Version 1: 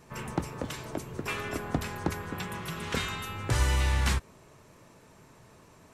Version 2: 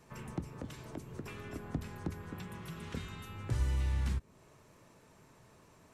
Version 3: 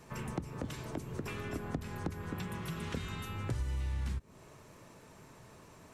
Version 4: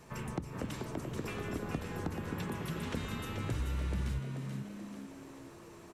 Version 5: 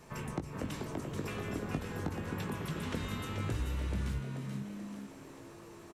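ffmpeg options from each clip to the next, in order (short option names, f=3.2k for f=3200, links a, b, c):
-filter_complex "[0:a]acrossover=split=350[a][b];[b]acompressor=threshold=-45dB:ratio=3[c];[a][c]amix=inputs=2:normalize=0,volume=-5.5dB"
-af "acompressor=threshold=-38dB:ratio=6,volume=5.5dB"
-filter_complex "[0:a]asplit=7[a][b][c][d][e][f][g];[b]adelay=433,afreqshift=69,volume=-6dB[h];[c]adelay=866,afreqshift=138,volume=-11.8dB[i];[d]adelay=1299,afreqshift=207,volume=-17.7dB[j];[e]adelay=1732,afreqshift=276,volume=-23.5dB[k];[f]adelay=2165,afreqshift=345,volume=-29.4dB[l];[g]adelay=2598,afreqshift=414,volume=-35.2dB[m];[a][h][i][j][k][l][m]amix=inputs=7:normalize=0"
-filter_complex "[0:a]asplit=2[a][b];[b]adelay=20,volume=-8.5dB[c];[a][c]amix=inputs=2:normalize=0"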